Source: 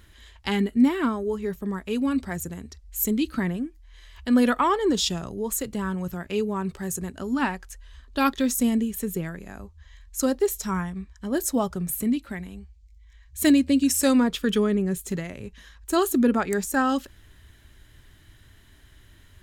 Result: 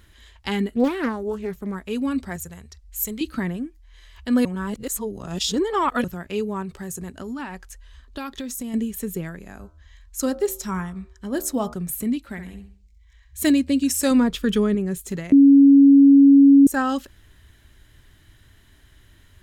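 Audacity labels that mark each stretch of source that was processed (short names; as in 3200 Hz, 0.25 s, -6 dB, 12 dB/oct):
0.740000	1.750000	Doppler distortion depth 0.76 ms
2.360000	3.210000	bell 280 Hz -13.5 dB 1 oct
4.450000	6.040000	reverse
6.620000	8.740000	compressor, threshold -28 dBFS
9.490000	11.740000	de-hum 76.67 Hz, notches 20
12.240000	13.440000	flutter echo walls apart 11.3 m, dies away in 0.44 s
14.110000	14.750000	low shelf 180 Hz +7.5 dB
15.320000	16.670000	bleep 278 Hz -7.5 dBFS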